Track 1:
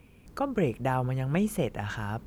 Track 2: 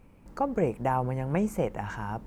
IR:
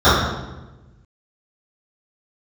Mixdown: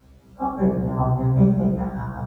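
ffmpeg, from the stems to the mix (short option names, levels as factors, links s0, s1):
-filter_complex "[0:a]acompressor=threshold=0.0126:ratio=1.5,acrusher=bits=9:mix=0:aa=0.000001,bandpass=f=570:t=q:w=6.5:csg=0,volume=0.794,asplit=2[s0][s1];[s1]volume=0.133[s2];[1:a]aeval=exprs='val(0)*pow(10,-31*if(lt(mod(5.1*n/s,1),2*abs(5.1)/1000),1-mod(5.1*n/s,1)/(2*abs(5.1)/1000),(mod(5.1*n/s,1)-2*abs(5.1)/1000)/(1-2*abs(5.1)/1000))/20)':c=same,volume=-1,adelay=1.8,volume=0.224,asplit=2[s3][s4];[s4]volume=0.631[s5];[2:a]atrim=start_sample=2205[s6];[s2][s5]amix=inputs=2:normalize=0[s7];[s7][s6]afir=irnorm=-1:irlink=0[s8];[s0][s3][s8]amix=inputs=3:normalize=0,acrusher=bits=9:mix=0:aa=0.000001,afftfilt=real='re*1.73*eq(mod(b,3),0)':imag='im*1.73*eq(mod(b,3),0)':win_size=2048:overlap=0.75"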